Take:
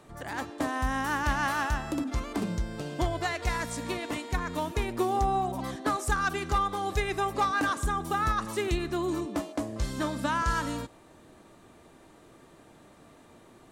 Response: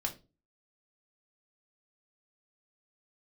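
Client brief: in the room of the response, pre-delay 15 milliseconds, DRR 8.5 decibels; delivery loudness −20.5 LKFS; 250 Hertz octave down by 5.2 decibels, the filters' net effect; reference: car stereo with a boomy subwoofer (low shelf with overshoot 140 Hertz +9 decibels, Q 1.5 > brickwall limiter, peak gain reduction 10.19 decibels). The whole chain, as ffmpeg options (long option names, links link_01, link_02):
-filter_complex "[0:a]equalizer=frequency=250:width_type=o:gain=-5.5,asplit=2[link_01][link_02];[1:a]atrim=start_sample=2205,adelay=15[link_03];[link_02][link_03]afir=irnorm=-1:irlink=0,volume=-10.5dB[link_04];[link_01][link_04]amix=inputs=2:normalize=0,lowshelf=frequency=140:width_type=q:width=1.5:gain=9,volume=9.5dB,alimiter=limit=-8.5dB:level=0:latency=1"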